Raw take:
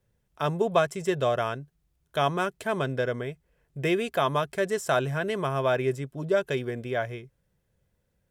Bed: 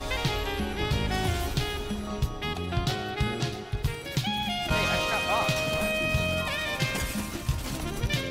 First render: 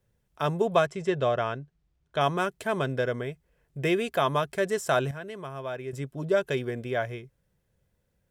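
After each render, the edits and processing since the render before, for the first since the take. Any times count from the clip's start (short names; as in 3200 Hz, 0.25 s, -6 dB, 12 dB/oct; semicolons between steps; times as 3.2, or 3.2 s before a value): 0.86–2.21 air absorption 92 m; 5.11–5.93 gain -10 dB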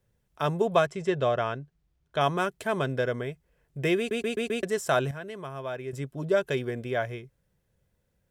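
3.98 stutter in place 0.13 s, 5 plays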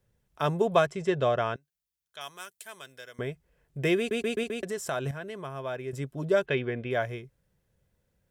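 1.56–3.19 pre-emphasis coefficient 0.97; 4.43–5.06 compressor 2:1, threshold -32 dBFS; 6.46–6.91 synth low-pass 2700 Hz, resonance Q 1.6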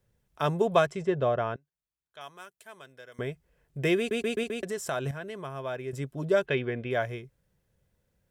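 1.03–3.12 high shelf 2400 Hz -11.5 dB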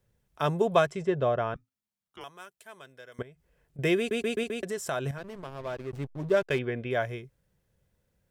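1.54–2.24 frequency shift -260 Hz; 3.22–3.79 compressor 8:1, threshold -47 dBFS; 5.18–6.59 backlash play -34 dBFS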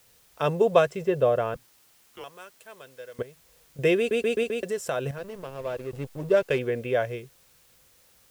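small resonant body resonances 500/2700 Hz, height 10 dB, ringing for 30 ms; requantised 10-bit, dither triangular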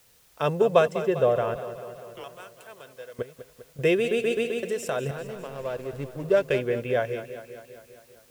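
warbling echo 0.199 s, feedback 63%, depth 57 cents, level -12.5 dB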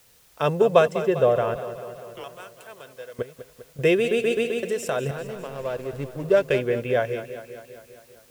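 gain +2.5 dB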